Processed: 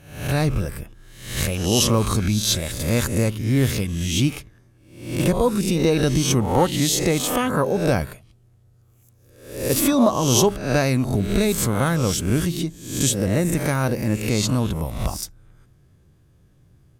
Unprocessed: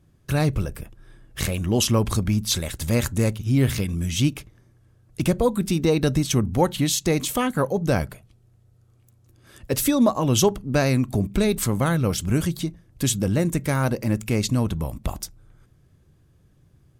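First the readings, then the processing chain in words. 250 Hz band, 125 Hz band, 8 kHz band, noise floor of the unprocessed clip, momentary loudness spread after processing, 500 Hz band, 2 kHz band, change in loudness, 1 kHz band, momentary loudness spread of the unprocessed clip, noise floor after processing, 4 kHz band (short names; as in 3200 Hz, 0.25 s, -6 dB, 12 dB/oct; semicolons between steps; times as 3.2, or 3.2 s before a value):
+1.5 dB, +1.0 dB, +4.0 dB, -59 dBFS, 10 LU, +2.0 dB, +3.0 dB, +2.0 dB, +3.0 dB, 10 LU, -56 dBFS, +3.5 dB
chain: spectral swells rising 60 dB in 0.62 s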